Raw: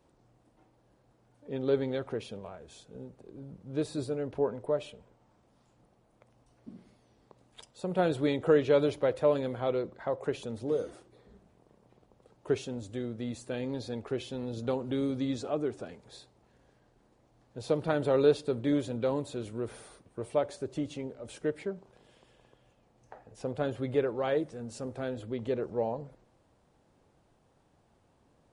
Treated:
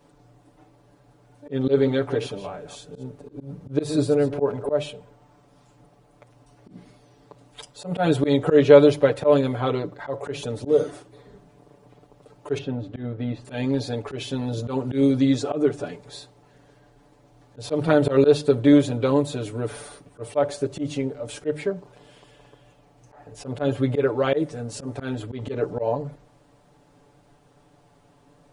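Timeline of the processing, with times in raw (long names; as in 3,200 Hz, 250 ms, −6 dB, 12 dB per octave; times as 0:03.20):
0:01.50–0:04.69: delay that plays each chunk backwards 139 ms, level −11.5 dB
0:12.58–0:13.45: high-frequency loss of the air 360 metres
whole clip: mains-hum notches 50/100/150 Hz; comb filter 6.9 ms, depth 91%; volume swells 102 ms; level +8 dB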